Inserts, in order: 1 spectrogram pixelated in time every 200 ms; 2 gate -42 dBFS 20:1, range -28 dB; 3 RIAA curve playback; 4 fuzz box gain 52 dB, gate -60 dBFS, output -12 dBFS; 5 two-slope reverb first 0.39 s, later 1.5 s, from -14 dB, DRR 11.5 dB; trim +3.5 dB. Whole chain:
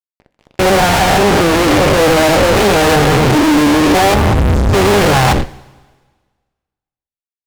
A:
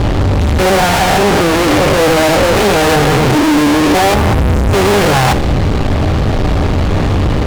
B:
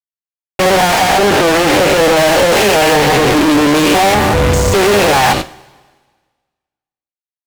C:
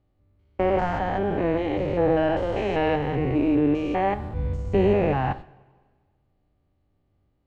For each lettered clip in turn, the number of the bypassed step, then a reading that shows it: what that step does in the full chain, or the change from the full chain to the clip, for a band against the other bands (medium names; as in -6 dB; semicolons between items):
2, momentary loudness spread change +1 LU; 3, 125 Hz band -5.5 dB; 4, distortion -2 dB